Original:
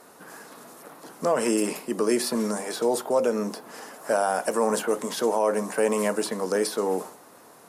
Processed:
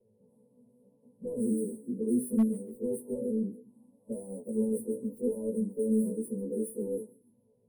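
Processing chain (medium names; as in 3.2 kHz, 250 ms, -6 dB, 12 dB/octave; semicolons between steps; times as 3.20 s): partials quantised in pitch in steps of 2 st; rippled EQ curve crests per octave 0.94, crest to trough 15 dB; flange 0.72 Hz, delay 8 ms, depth 9.7 ms, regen +44%; level-controlled noise filter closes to 2.3 kHz, open at -18.5 dBFS; in parallel at -8.5 dB: saturation -24 dBFS, distortion -9 dB; on the sum: touch-sensitive phaser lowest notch 260 Hz, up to 4.7 kHz, full sweep at -19.5 dBFS; inverse Chebyshev band-stop 1.3–5.4 kHz, stop band 70 dB; hard clipper -17.5 dBFS, distortion -28 dB; on a send: feedback echo behind a high-pass 143 ms, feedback 36%, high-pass 2.1 kHz, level -16 dB; on the sum: trim -1.5 dB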